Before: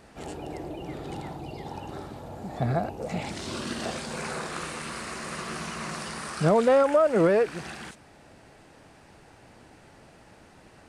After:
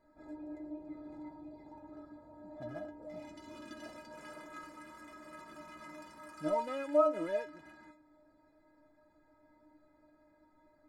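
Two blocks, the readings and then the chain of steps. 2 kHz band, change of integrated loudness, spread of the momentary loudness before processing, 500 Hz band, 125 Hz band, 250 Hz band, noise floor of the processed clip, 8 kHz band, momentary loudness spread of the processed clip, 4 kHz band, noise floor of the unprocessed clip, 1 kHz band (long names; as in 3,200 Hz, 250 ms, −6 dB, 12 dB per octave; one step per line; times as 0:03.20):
−15.5 dB, −11.0 dB, 18 LU, −11.5 dB, −24.5 dB, −12.0 dB, −69 dBFS, −22.0 dB, 20 LU, −19.5 dB, −54 dBFS, −10.5 dB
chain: adaptive Wiener filter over 15 samples
stiff-string resonator 300 Hz, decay 0.26 s, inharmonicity 0.008
level +2 dB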